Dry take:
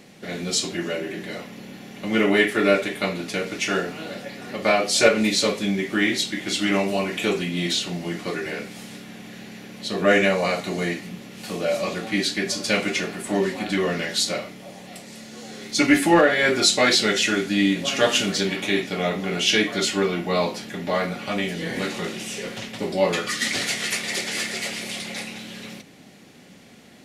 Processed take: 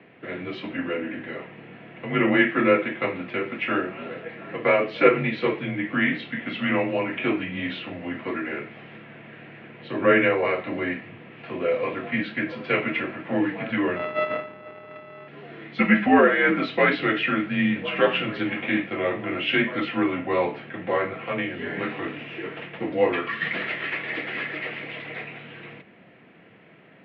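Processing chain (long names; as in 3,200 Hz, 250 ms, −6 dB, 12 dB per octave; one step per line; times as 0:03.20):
0:13.96–0:15.28: samples sorted by size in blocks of 64 samples
single-sideband voice off tune −75 Hz 270–2,800 Hz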